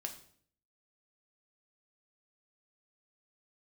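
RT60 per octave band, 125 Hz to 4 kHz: 0.75, 0.70, 0.60, 0.50, 0.50, 0.50 seconds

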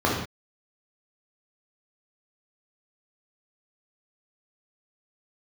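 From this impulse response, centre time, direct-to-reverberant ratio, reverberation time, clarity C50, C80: 47 ms, −4.5 dB, non-exponential decay, 2.0 dB, 6.0 dB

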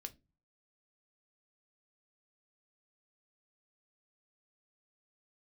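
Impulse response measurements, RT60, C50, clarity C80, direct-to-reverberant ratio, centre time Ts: non-exponential decay, 22.5 dB, 29.5 dB, 7.5 dB, 4 ms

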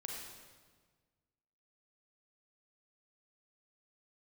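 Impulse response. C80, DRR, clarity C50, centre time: 2.5 dB, −1.5 dB, 0.5 dB, 76 ms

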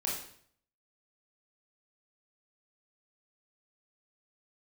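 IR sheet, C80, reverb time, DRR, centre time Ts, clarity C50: 7.0 dB, 0.60 s, −4.5 dB, 45 ms, 3.0 dB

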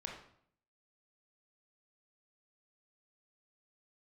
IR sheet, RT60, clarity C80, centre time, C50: 0.65 s, 8.0 dB, 35 ms, 4.0 dB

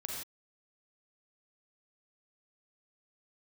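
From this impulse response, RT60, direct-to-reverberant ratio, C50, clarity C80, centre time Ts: non-exponential decay, −1.5 dB, 0.0 dB, 2.5 dB, 56 ms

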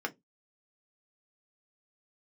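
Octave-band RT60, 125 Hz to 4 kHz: 0.25, 0.25, 0.20, 0.15, 0.10, 0.15 seconds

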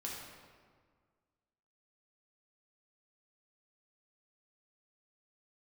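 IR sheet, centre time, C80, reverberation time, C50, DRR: 85 ms, 2.5 dB, 1.7 s, 0.5 dB, −4.0 dB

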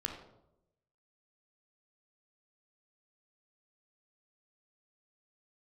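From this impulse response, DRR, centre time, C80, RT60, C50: 2.0 dB, 29 ms, 8.5 dB, 0.85 s, 5.5 dB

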